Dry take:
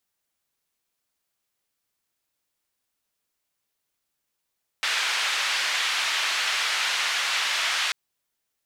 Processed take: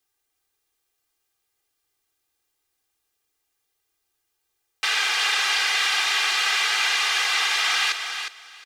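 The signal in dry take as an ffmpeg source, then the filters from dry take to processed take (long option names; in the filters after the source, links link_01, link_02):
-f lavfi -i "anoisesrc=color=white:duration=3.09:sample_rate=44100:seed=1,highpass=frequency=1300,lowpass=frequency=3400,volume=-10.9dB"
-filter_complex "[0:a]aecho=1:1:2.5:0.93,acrossover=split=490|6300[link_01][link_02][link_03];[link_03]alimiter=level_in=7dB:limit=-24dB:level=0:latency=1,volume=-7dB[link_04];[link_01][link_02][link_04]amix=inputs=3:normalize=0,aecho=1:1:359|718|1077:0.422|0.0759|0.0137"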